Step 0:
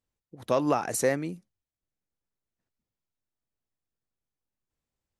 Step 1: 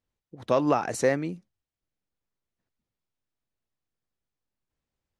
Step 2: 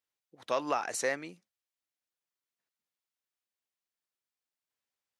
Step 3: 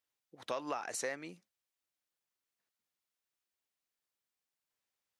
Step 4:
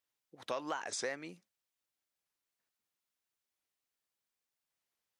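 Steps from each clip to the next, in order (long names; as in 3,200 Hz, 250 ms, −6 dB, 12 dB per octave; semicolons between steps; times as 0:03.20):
Bessel low-pass filter 5,300 Hz, order 2; level +2 dB
high-pass filter 1,400 Hz 6 dB per octave
downward compressor 2.5 to 1, threshold −39 dBFS, peak gain reduction 9.5 dB; level +1 dB
wow of a warped record 45 rpm, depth 250 cents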